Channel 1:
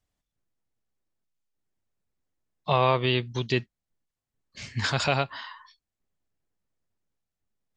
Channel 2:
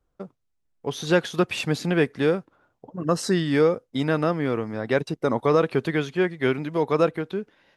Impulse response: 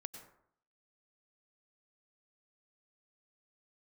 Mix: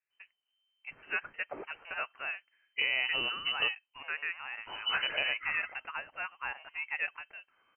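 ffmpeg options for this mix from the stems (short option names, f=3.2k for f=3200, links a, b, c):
-filter_complex "[0:a]acompressor=threshold=-30dB:ratio=2.5,adelay=100,volume=-0.5dB[a];[1:a]highpass=810,volume=-7.5dB[b];[a][b]amix=inputs=2:normalize=0,lowpass=f=2.6k:t=q:w=0.5098,lowpass=f=2.6k:t=q:w=0.6013,lowpass=f=2.6k:t=q:w=0.9,lowpass=f=2.6k:t=q:w=2.563,afreqshift=-3100"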